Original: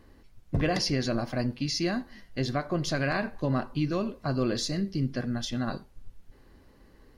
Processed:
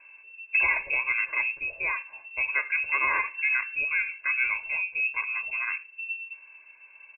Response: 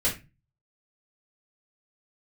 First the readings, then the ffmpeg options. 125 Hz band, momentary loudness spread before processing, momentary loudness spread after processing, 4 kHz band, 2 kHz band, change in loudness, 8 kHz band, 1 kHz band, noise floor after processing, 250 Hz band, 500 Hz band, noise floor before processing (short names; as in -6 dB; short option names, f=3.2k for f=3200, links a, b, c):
under -30 dB, 6 LU, 10 LU, under -30 dB, +13.5 dB, +3.5 dB, under -40 dB, +1.0 dB, -53 dBFS, under -25 dB, -16.0 dB, -57 dBFS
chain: -af "aecho=1:1:1.8:0.82,lowpass=f=2.3k:t=q:w=0.5098,lowpass=f=2.3k:t=q:w=0.6013,lowpass=f=2.3k:t=q:w=0.9,lowpass=f=2.3k:t=q:w=2.563,afreqshift=-2700"